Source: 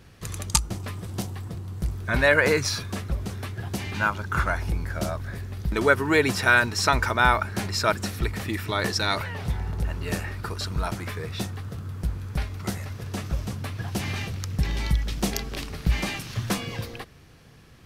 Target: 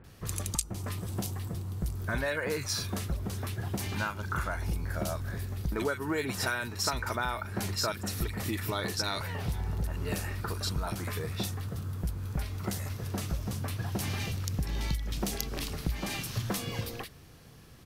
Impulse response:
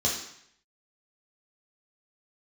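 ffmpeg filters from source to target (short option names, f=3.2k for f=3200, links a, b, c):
-filter_complex "[0:a]highshelf=f=11k:g=11,acompressor=threshold=-26dB:ratio=6,acrossover=split=2000[a][b];[b]adelay=40[c];[a][c]amix=inputs=2:normalize=0,volume=-1.5dB"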